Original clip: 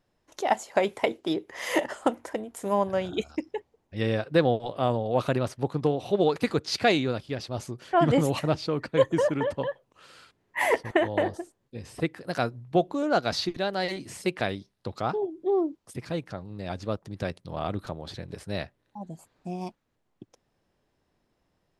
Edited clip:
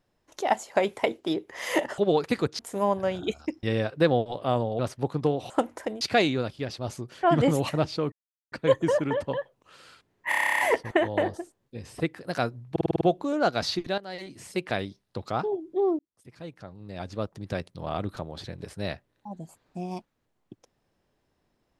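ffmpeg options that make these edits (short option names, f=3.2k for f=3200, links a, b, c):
-filter_complex "[0:a]asplit=26[a][b][c][d][e][f][g][h][i][j][k][l][m][n][o][p][q][r][s][t][u][v][w][x][y][z];[a]atrim=end=1.982[aa];[b]atrim=start=6.098:end=6.712[ab];[c]atrim=start=2.488:end=3.532[ac];[d]atrim=start=3.968:end=5.132[ad];[e]atrim=start=5.388:end=6.102[ae];[f]atrim=start=1.978:end=2.492[af];[g]atrim=start=6.708:end=8.82,asetpts=PTS-STARTPTS,afade=t=out:st=2.108:d=0.004:c=hsin,apad=pad_dur=0.4[ag];[h]atrim=start=8.82:end=10.622,asetpts=PTS-STARTPTS,afade=t=in:d=0.004:c=hsin[ah];[i]atrim=start=10.588:end=10.622[ai];[j]atrim=start=10.588:end=10.622[aj];[k]atrim=start=10.588:end=10.622[ak];[l]atrim=start=10.588:end=10.622[al];[m]atrim=start=10.588:end=10.622[am];[n]atrim=start=10.588:end=10.622[an];[o]atrim=start=10.588:end=10.622[ao];[p]atrim=start=10.588:end=10.622[ap];[q]atrim=start=10.588:end=10.622[aq];[r]atrim=start=10.588:end=12.762[ar];[s]atrim=start=12.708:end=12.762[as];[t]atrim=start=12.708:end=12.762[at];[u]atrim=start=12.708:end=12.762[au];[v]atrim=start=12.708:end=12.762[av];[w]atrim=start=12.708:end=12.762[aw];[x]atrim=start=12.708:end=13.68,asetpts=PTS-STARTPTS,afade=t=out:st=0.968:d=0.004:c=hsin:silence=0.211349[ax];[y]atrim=start=13.68:end=15.69,asetpts=PTS-STARTPTS,afade=t=in:d=0.82:silence=0.211349,afade=t=out:st=2.006:d=0.004:c=hsin[ay];[z]atrim=start=15.69,asetpts=PTS-STARTPTS,afade=t=in:d=1.36[az];[aa][ab]acrossfade=d=0.004:c1=hsin:c2=hsin[ba];[ba][ac]acrossfade=d=0.004:c1=hsin:c2=hsin[bb];[bb][ad]acrossfade=d=0.004:c1=hsin:c2=hsin[bc];[bc][ae]acrossfade=d=0.004:c1=hsin:c2=hsin[bd];[bd][af]acrossfade=d=0.004:c1=hsin:c2=hsin[be];[ag][ah]concat=n=2:v=0:a=1[bf];[be][bf]acrossfade=d=0.004:c1=hsin:c2=hsin[bg];[bg][ai]acrossfade=d=0.004:c1=hsin:c2=hsin[bh];[bh][aj]acrossfade=d=0.004:c1=hsin:c2=hsin[bi];[bi][ak]acrossfade=d=0.004:c1=hsin:c2=hsin[bj];[bj][al]acrossfade=d=0.004:c1=hsin:c2=hsin[bk];[bk][am]acrossfade=d=0.004:c1=hsin:c2=hsin[bl];[bl][an]acrossfade=d=0.004:c1=hsin:c2=hsin[bm];[bm][ao]acrossfade=d=0.004:c1=hsin:c2=hsin[bn];[bn][ap]acrossfade=d=0.004:c1=hsin:c2=hsin[bo];[bo][aq]acrossfade=d=0.004:c1=hsin:c2=hsin[bp];[bp][ar]acrossfade=d=0.004:c1=hsin:c2=hsin[bq];[bq][as]acrossfade=d=0.004:c1=hsin:c2=hsin[br];[br][at]acrossfade=d=0.004:c1=hsin:c2=hsin[bs];[bs][au]acrossfade=d=0.004:c1=hsin:c2=hsin[bt];[bt][av]acrossfade=d=0.004:c1=hsin:c2=hsin[bu];[bu][aw]acrossfade=d=0.004:c1=hsin:c2=hsin[bv];[ax][ay][az]concat=n=3:v=0:a=1[bw];[bv][bw]acrossfade=d=0.004:c1=hsin:c2=hsin"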